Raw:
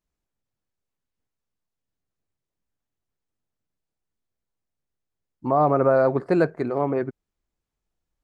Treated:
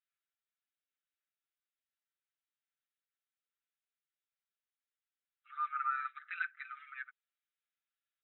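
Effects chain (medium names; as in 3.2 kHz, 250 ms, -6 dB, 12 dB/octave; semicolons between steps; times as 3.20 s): brick-wall FIR band-pass 1.2–4 kHz; comb 5.9 ms, depth 86%; trim -5.5 dB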